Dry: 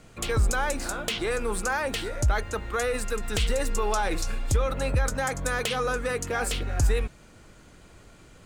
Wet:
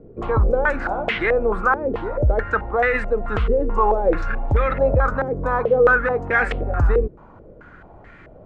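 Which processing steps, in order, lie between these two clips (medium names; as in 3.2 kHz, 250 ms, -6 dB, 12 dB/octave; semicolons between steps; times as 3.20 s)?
step-sequenced low-pass 4.6 Hz 420–1900 Hz; trim +5 dB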